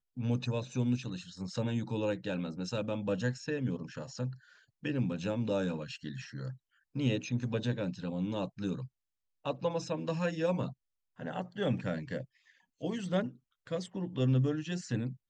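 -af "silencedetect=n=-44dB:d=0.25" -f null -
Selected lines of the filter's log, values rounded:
silence_start: 4.34
silence_end: 4.83 | silence_duration: 0.49
silence_start: 6.54
silence_end: 6.96 | silence_duration: 0.42
silence_start: 8.86
silence_end: 9.46 | silence_duration: 0.60
silence_start: 10.72
silence_end: 11.20 | silence_duration: 0.47
silence_start: 12.24
silence_end: 12.82 | silence_duration: 0.57
silence_start: 13.31
silence_end: 13.67 | silence_duration: 0.36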